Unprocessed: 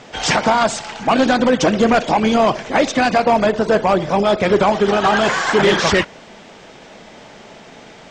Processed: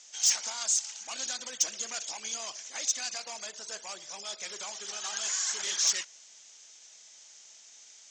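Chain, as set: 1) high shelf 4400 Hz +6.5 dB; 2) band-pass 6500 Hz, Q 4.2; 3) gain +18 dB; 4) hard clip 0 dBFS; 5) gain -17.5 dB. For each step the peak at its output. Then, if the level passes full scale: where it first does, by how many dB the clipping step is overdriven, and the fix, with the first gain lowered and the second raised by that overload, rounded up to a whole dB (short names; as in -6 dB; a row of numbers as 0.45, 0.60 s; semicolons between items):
-3.5, -8.5, +9.5, 0.0, -17.5 dBFS; step 3, 9.5 dB; step 3 +8 dB, step 5 -7.5 dB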